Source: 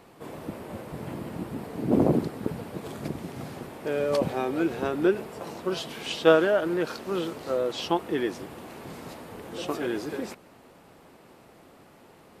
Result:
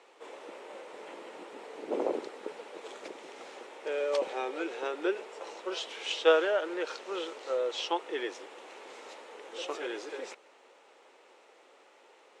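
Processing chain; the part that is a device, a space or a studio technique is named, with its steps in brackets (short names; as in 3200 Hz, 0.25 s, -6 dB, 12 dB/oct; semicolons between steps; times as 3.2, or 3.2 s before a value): phone speaker on a table (speaker cabinet 460–7300 Hz, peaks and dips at 680 Hz -8 dB, 1100 Hz -5 dB, 1600 Hz -4 dB, 4700 Hz -6 dB)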